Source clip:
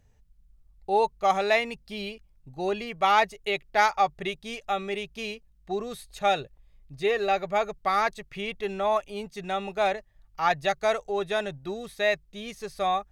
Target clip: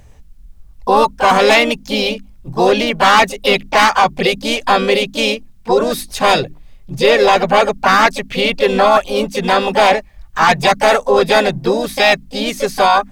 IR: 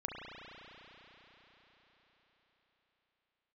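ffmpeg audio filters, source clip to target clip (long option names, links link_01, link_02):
-filter_complex "[0:a]bandreject=frequency=50:width_type=h:width=6,bandreject=frequency=100:width_type=h:width=6,bandreject=frequency=150:width_type=h:width=6,bandreject=frequency=200:width_type=h:width=6,bandreject=frequency=250:width_type=h:width=6,bandreject=frequency=300:width_type=h:width=6,apsyclip=24.5dB,asplit=3[link_01][link_02][link_03];[link_02]asetrate=55563,aresample=44100,atempo=0.793701,volume=-6dB[link_04];[link_03]asetrate=58866,aresample=44100,atempo=0.749154,volume=-7dB[link_05];[link_01][link_04][link_05]amix=inputs=3:normalize=0,volume=-7dB"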